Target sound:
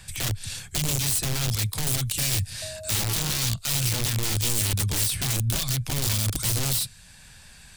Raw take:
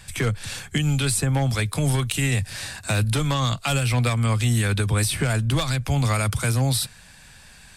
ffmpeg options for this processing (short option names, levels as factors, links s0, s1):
-filter_complex "[0:a]asettb=1/sr,asplit=3[s0][s1][s2];[s0]atrim=end=2.624[s3];[s1]atrim=start=2.62:end=3.38,asetpts=PTS-STARTPTS,afade=t=in:d=0.004:c=qsin,afade=t=out:st=0.756:d=0.004:c=qsin,aeval=exprs='val(0)+0.0501*sin(2*PI*630*n/s)':c=same[s4];[s2]atrim=start=3.376[s5];[s3][s4]acrossfade=d=0.004:c1=hsin:c2=qsin[s6];[s6][s5]acrossfade=d=0.004:c1=qsin:c2=hsin,aeval=exprs='(mod(7.08*val(0)+1,2)-1)/7.08':c=same,acrossover=split=180|3000[s7][s8][s9];[s8]acompressor=threshold=0.001:ratio=1.5[s10];[s7][s10][s9]amix=inputs=3:normalize=0"